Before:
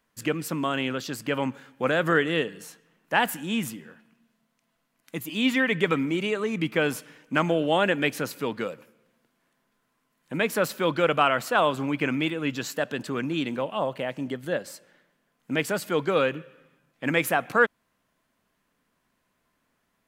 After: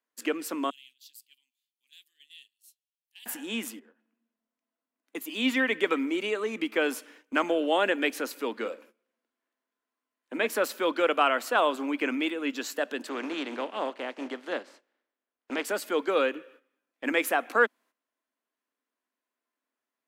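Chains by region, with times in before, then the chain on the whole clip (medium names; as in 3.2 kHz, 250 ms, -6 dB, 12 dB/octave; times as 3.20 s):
0.70–3.26 s: inverse Chebyshev high-pass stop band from 1.5 kHz, stop band 50 dB + peaking EQ 6.1 kHz -13 dB 1.6 oct
3.79–5.15 s: valve stage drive 38 dB, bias 0.35 + tilt EQ -2.5 dB/octave + compression 16:1, threshold -48 dBFS
8.57–10.47 s: treble shelf 10 kHz -8.5 dB + doubling 44 ms -11 dB
13.07–15.64 s: spectral contrast reduction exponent 0.56 + tape spacing loss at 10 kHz 23 dB
whole clip: steep high-pass 240 Hz 48 dB/octave; gate -52 dBFS, range -13 dB; trim -2 dB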